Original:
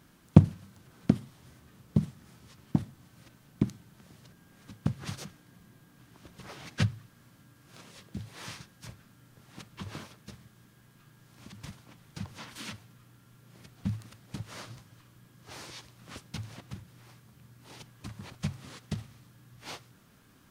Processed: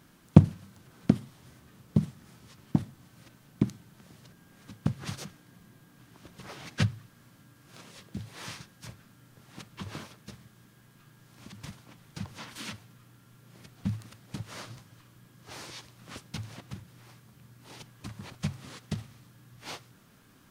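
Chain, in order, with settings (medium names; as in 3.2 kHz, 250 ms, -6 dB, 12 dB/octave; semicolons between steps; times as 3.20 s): peaking EQ 60 Hz -4 dB 0.99 oct; trim +1.5 dB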